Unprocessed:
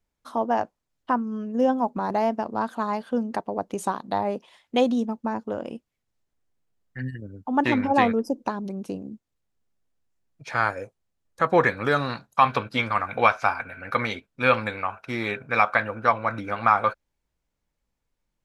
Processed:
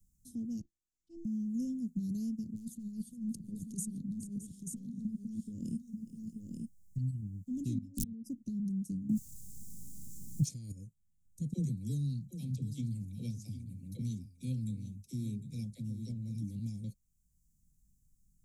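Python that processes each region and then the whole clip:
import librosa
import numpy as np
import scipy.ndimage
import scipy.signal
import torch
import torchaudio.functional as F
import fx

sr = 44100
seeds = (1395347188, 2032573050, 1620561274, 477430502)

y = fx.chain(x, sr, fx.bandpass_edges(low_hz=110.0, high_hz=5400.0),
    fx.auto_swell(attack_ms=104.0),
    fx.robotise(hz=336.0), at=(0.61, 1.25))
y = fx.chain(y, sr, fx.overload_stage(gain_db=16.0),
    fx.over_compress(threshold_db=-34.0, ratio=-1.0),
    fx.echo_multitap(ms=(416, 615, 885), db=(-17.5, -19.0, -6.0)), at=(2.55, 6.98))
y = fx.chain(y, sr, fx.level_steps(step_db=18),
    fx.overflow_wrap(gain_db=10.5), at=(7.78, 8.26))
y = fx.chain(y, sr, fx.low_shelf(hz=210.0, db=-10.0),
    fx.env_flatten(amount_pct=100), at=(9.09, 10.72))
y = fx.chain(y, sr, fx.dispersion(late='lows', ms=59.0, hz=320.0),
    fx.echo_single(ms=755, db=-13.5), at=(11.53, 16.59))
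y = scipy.signal.sosfilt(scipy.signal.ellip(3, 1.0, 80, [190.0, 7100.0], 'bandstop', fs=sr, output='sos'), y)
y = fx.peak_eq(y, sr, hz=660.0, db=-4.5, octaves=0.45)
y = fx.band_squash(y, sr, depth_pct=40)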